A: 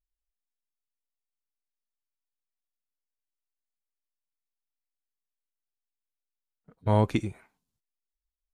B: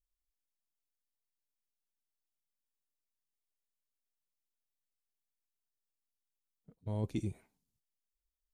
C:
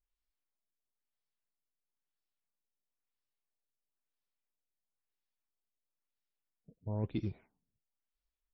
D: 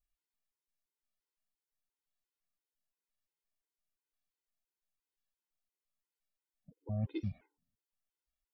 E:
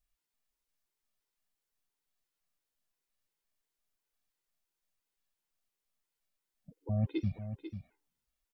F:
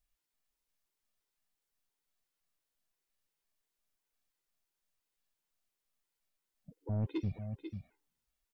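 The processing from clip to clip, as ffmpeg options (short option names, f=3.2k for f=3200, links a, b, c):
-af "areverse,acompressor=threshold=-30dB:ratio=6,areverse,equalizer=f=1.4k:w=0.68:g=-14.5,volume=-1dB"
-af "acrusher=bits=7:mode=log:mix=0:aa=0.000001,afftfilt=real='re*lt(b*sr/1024,670*pow(5800/670,0.5+0.5*sin(2*PI*1*pts/sr)))':imag='im*lt(b*sr/1024,670*pow(5800/670,0.5+0.5*sin(2*PI*1*pts/sr)))':win_size=1024:overlap=0.75"
-af "afftfilt=real='re*gt(sin(2*PI*2.9*pts/sr)*(1-2*mod(floor(b*sr/1024/270),2)),0)':imag='im*gt(sin(2*PI*2.9*pts/sr)*(1-2*mod(floor(b*sr/1024/270),2)),0)':win_size=1024:overlap=0.75,volume=1dB"
-af "aecho=1:1:493:0.316,volume=4.5dB"
-af "asoftclip=type=tanh:threshold=-27.5dB"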